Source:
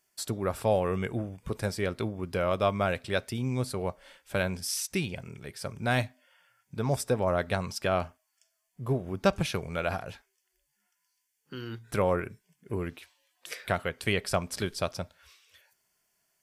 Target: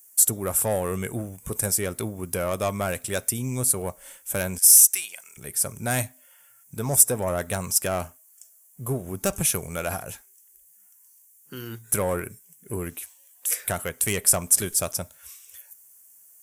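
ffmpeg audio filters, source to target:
ffmpeg -i in.wav -filter_complex "[0:a]asettb=1/sr,asplit=3[link_01][link_02][link_03];[link_01]atrim=end=4.584[link_04];[link_02]atrim=start=4.58:end=5.37,asetpts=PTS-STARTPTS,afade=type=in:duration=0.004:curve=qsin,afade=type=out:start_time=0.786:duration=0.004:curve=qsin,highpass=1300[link_05];[link_03]atrim=start=5.366[link_06];[link_04][link_05]acrossfade=duration=0.004:curve1=hsin:curve2=qsin[link_07];[link_07][link_06]acrossfade=duration=0.004:curve1=qsin:curve2=hsin,asoftclip=type=tanh:threshold=-19.5dB,aexciter=amount=12.8:drive=3.9:freq=6500,volume=2dB" out.wav

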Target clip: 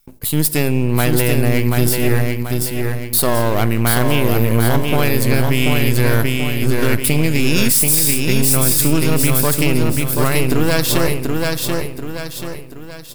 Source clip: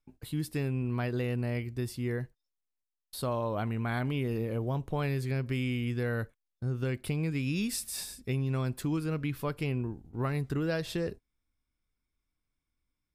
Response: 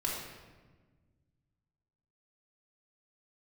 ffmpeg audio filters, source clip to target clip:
-filter_complex "[0:a]aeval=exprs='if(lt(val(0),0),0.251*val(0),val(0))':channel_layout=same,aemphasis=mode=production:type=75fm,aecho=1:1:734|1468|2202|2936|3670:0.631|0.271|0.117|0.0502|0.0216,asplit=2[link_01][link_02];[1:a]atrim=start_sample=2205[link_03];[link_02][link_03]afir=irnorm=-1:irlink=0,volume=-18dB[link_04];[link_01][link_04]amix=inputs=2:normalize=0,alimiter=level_in=17.5dB:limit=-1dB:release=50:level=0:latency=1,volume=-1dB"

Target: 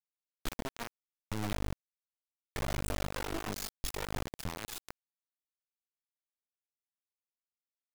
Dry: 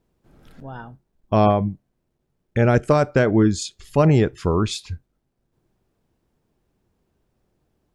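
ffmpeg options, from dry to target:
ffmpeg -i in.wav -filter_complex "[0:a]aeval=exprs='(tanh(25.1*val(0)+0.25)-tanh(0.25))/25.1':channel_layout=same,equalizer=frequency=480:width=4.8:gain=-10,bandreject=frequency=149:width_type=h:width=4,bandreject=frequency=298:width_type=h:width=4,acompressor=threshold=-45dB:ratio=10,aeval=exprs='0.0188*(cos(1*acos(clip(val(0)/0.0188,-1,1)))-cos(1*PI/2))+0.00133*(cos(4*acos(clip(val(0)/0.0188,-1,1)))-cos(4*PI/2))+0.00668*(cos(5*acos(clip(val(0)/0.0188,-1,1)))-cos(5*PI/2))+0.000841*(cos(6*acos(clip(val(0)/0.0188,-1,1)))-cos(6*PI/2))+0.000133*(cos(8*acos(clip(val(0)/0.0188,-1,1)))-cos(8*PI/2))':channel_layout=same,asettb=1/sr,asplit=3[link_01][link_02][link_03];[link_01]atrim=end=1.524[link_04];[link_02]atrim=start=1.52:end=4.24,asetpts=PTS-STARTPTS,afade=type=in:duration=0.004:curve=qsin,afade=type=out:start_time=2.716:duration=0.004:curve=qsin,aeval=exprs='val(0)+0.00891*(sin(2*PI*50*n/s)+sin(2*PI*2*50*n/s)/2+sin(2*PI*3*50*n/s)/3+sin(2*PI*4*50*n/s)/4+sin(2*PI*5*50*n/s)/5)':channel_layout=same[link_05];[link_03]atrim=start=4.236[link_06];[link_04][link_05]acrossfade=duration=0.004:curve1=hsin:curve2=qsin[link_07];[link_07][link_06]acrossfade=duration=0.004:curve1=qsin:curve2=hsin,aphaser=in_gain=1:out_gain=1:delay=4.9:decay=0.6:speed=0.69:type=triangular,acrusher=bits=3:dc=4:mix=0:aa=0.000001,volume=1dB" out.wav

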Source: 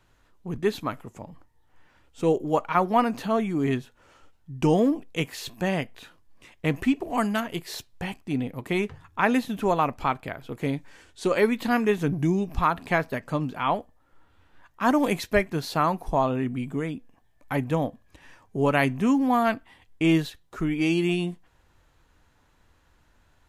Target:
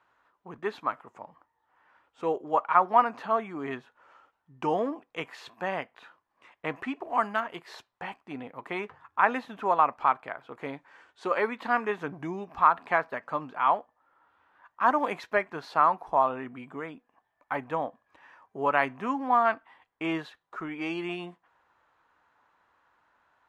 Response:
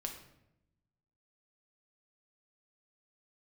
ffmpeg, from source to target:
-af "bandpass=frequency=1100:width_type=q:width=1.5:csg=0,volume=3.5dB"

